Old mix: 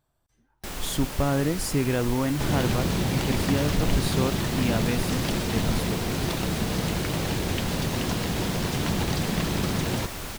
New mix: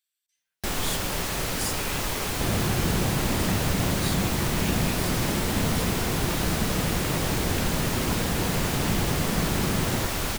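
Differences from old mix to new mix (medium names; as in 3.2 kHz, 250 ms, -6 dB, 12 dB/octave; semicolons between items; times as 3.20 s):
speech: add inverse Chebyshev high-pass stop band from 490 Hz, stop band 70 dB; first sound +7.0 dB; second sound: add distance through air 430 m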